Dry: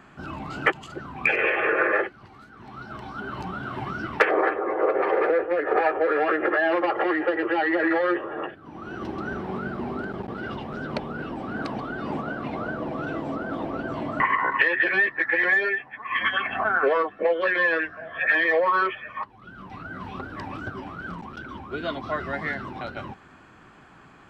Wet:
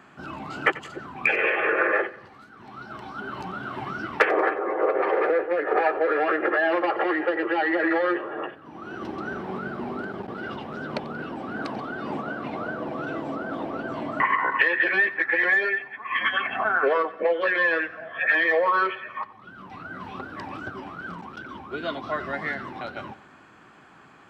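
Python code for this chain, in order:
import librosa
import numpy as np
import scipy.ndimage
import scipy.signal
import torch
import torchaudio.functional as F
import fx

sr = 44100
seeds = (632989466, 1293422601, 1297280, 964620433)

p1 = fx.highpass(x, sr, hz=180.0, slope=6)
y = p1 + fx.echo_feedback(p1, sr, ms=91, feedback_pct=46, wet_db=-18, dry=0)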